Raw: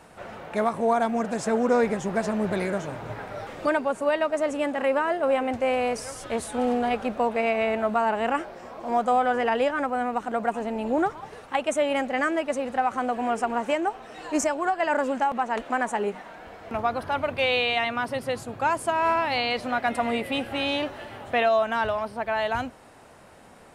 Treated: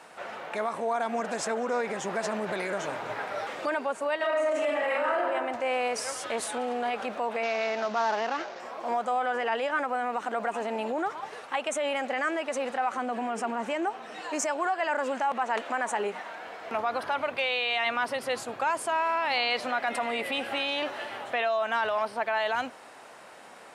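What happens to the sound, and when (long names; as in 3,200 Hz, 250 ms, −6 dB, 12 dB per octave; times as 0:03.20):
0:04.17–0:05.20: thrown reverb, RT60 1 s, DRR −11 dB
0:07.43–0:08.60: variable-slope delta modulation 32 kbit/s
0:12.97–0:14.21: parametric band 200 Hz +9.5 dB 1.2 octaves
whole clip: speech leveller within 4 dB 0.5 s; brickwall limiter −18.5 dBFS; meter weighting curve A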